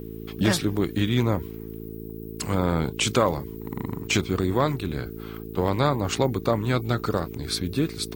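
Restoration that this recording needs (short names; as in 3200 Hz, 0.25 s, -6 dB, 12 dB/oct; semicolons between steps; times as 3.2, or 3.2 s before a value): de-hum 55 Hz, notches 8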